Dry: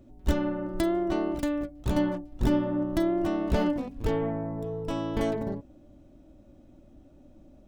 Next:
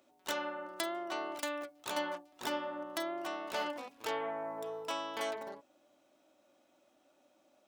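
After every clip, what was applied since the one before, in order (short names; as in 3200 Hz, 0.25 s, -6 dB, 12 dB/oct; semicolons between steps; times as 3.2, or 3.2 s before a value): HPF 950 Hz 12 dB/oct; bell 1800 Hz -3 dB 0.29 oct; vocal rider 0.5 s; gain +2 dB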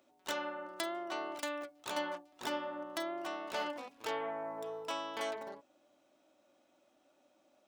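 bell 14000 Hz -4.5 dB 0.81 oct; gain -1 dB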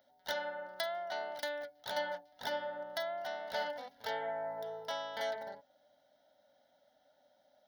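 fixed phaser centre 1700 Hz, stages 8; gain +3 dB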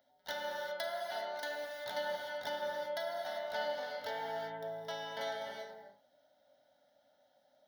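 non-linear reverb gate 0.42 s flat, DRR 0 dB; gain -3.5 dB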